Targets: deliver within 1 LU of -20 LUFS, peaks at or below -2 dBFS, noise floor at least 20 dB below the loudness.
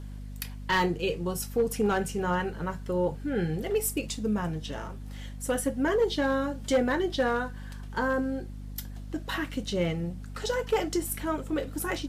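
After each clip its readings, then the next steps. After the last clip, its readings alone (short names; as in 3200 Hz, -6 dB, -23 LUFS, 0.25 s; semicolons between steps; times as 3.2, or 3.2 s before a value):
clipped 0.4%; flat tops at -18.0 dBFS; hum 50 Hz; harmonics up to 250 Hz; hum level -37 dBFS; loudness -29.5 LUFS; peak -18.0 dBFS; loudness target -20.0 LUFS
-> clip repair -18 dBFS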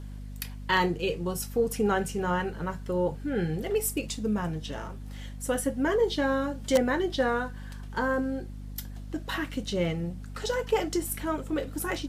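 clipped 0.0%; hum 50 Hz; harmonics up to 250 Hz; hum level -37 dBFS
-> de-hum 50 Hz, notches 5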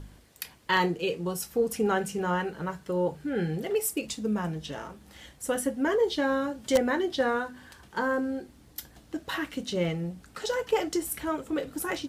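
hum none; loudness -29.5 LUFS; peak -9.0 dBFS; loudness target -20.0 LUFS
-> gain +9.5 dB; limiter -2 dBFS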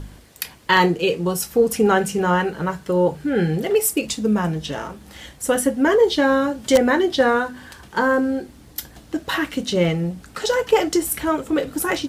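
loudness -20.0 LUFS; peak -2.0 dBFS; noise floor -46 dBFS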